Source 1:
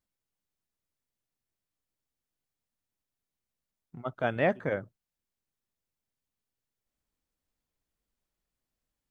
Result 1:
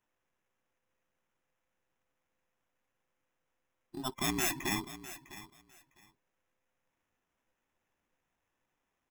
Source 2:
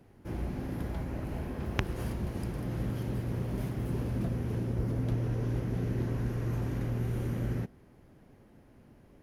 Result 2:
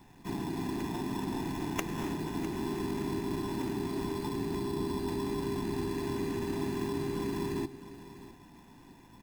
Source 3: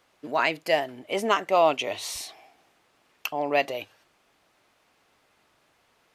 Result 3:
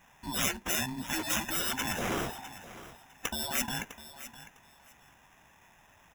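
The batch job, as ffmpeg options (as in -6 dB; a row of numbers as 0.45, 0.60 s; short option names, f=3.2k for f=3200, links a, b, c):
-filter_complex "[0:a]afftfilt=real='real(if(between(b,1,1008),(2*floor((b-1)/24)+1)*24-b,b),0)':imag='imag(if(between(b,1,1008),(2*floor((b-1)/24)+1)*24-b,b),0)*if(between(b,1,1008),-1,1)':win_size=2048:overlap=0.75,asplit=2[a][b];[b]acompressor=threshold=-40dB:ratio=16,volume=-1dB[c];[a][c]amix=inputs=2:normalize=0,equalizer=f=1.9k:w=1.5:g=3,aecho=1:1:1.1:0.97,acrusher=samples=10:mix=1:aa=0.000001,afftfilt=real='re*lt(hypot(re,im),0.2)':imag='im*lt(hypot(re,im),0.2)':win_size=1024:overlap=0.75,aecho=1:1:654|1308:0.188|0.0358,adynamicequalizer=threshold=0.00447:dfrequency=290:dqfactor=0.95:tfrequency=290:tqfactor=0.95:attack=5:release=100:ratio=0.375:range=3.5:mode=boostabove:tftype=bell,volume=-4.5dB"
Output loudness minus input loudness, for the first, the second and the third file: -3.5, -0.5, -6.0 LU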